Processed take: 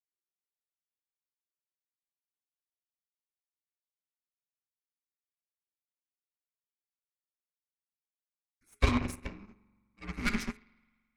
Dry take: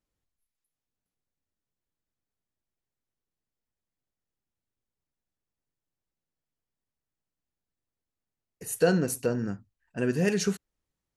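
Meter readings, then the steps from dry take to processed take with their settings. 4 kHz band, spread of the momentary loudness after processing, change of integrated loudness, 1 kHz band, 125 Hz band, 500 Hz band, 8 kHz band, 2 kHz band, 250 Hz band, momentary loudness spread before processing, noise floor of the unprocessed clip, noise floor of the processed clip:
−2.5 dB, 20 LU, −5.5 dB, −0.5 dB, −5.0 dB, −16.0 dB, −13.5 dB, −2.0 dB, −7.5 dB, 17 LU, below −85 dBFS, below −85 dBFS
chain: parametric band 2,500 Hz +13.5 dB 0.65 octaves
spring reverb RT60 1.8 s, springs 43 ms, chirp 50 ms, DRR 2.5 dB
harmonic generator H 3 −17 dB, 4 −21 dB, 8 −23 dB, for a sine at −8.5 dBFS
frequency shifter −430 Hz
expander for the loud parts 2.5 to 1, over −37 dBFS

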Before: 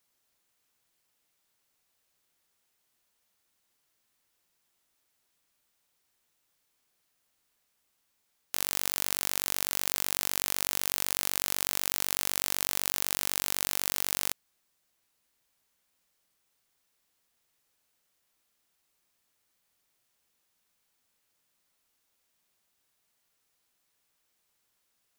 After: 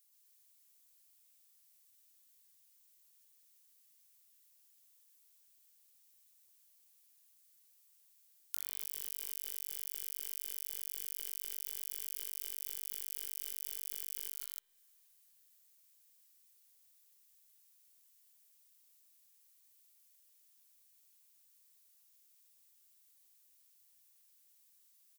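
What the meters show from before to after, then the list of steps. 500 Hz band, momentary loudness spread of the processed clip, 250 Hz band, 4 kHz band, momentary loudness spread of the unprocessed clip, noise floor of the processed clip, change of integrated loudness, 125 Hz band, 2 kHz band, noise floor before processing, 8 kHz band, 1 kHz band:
below −25 dB, 1 LU, below −25 dB, −18.5 dB, 1 LU, −68 dBFS, −11.0 dB, below −25 dB, −23.5 dB, −76 dBFS, −13.0 dB, below −30 dB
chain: first-order pre-emphasis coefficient 0.9
notch filter 1,400 Hz, Q 15
loudspeakers that aren't time-aligned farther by 43 metres −2 dB, 91 metres −5 dB
downward compressor 16 to 1, threshold −36 dBFS, peak gain reduction 20 dB
spring reverb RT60 3.8 s, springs 30 ms, chirp 40 ms, DRR 14.5 dB
level +2.5 dB

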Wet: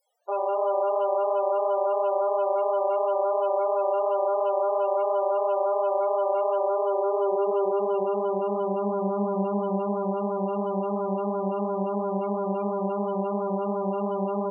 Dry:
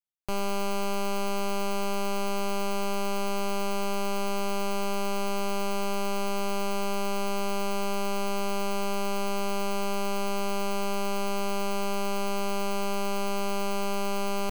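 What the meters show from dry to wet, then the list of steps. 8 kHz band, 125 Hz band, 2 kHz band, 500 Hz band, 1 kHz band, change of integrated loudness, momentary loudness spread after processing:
below −40 dB, can't be measured, below −15 dB, +8.5 dB, +4.5 dB, +5.0 dB, 3 LU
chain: low-shelf EQ 66 Hz −10 dB
notch filter 2,500 Hz, Q 30
upward compression, threshold −45 dBFS
chorus effect 2.9 Hz, delay 17 ms, depth 5.4 ms
reverb whose tail is shaped and stops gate 370 ms flat, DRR 10.5 dB
high-pass filter sweep 560 Hz → 140 Hz, 0:06.48–0:10.21
spectral peaks only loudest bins 16
level +5.5 dB

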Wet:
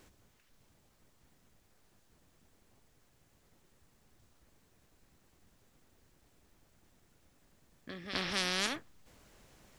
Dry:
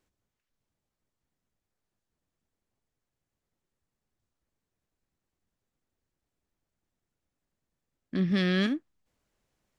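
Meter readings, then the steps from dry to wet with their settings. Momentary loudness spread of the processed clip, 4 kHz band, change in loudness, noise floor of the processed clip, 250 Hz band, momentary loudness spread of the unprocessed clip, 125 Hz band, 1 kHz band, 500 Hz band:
15 LU, +2.5 dB, −6.5 dB, −69 dBFS, −16.0 dB, 11 LU, −16.0 dB, +3.5 dB, −8.0 dB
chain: echo ahead of the sound 259 ms −22 dB
every bin compressed towards the loudest bin 4 to 1

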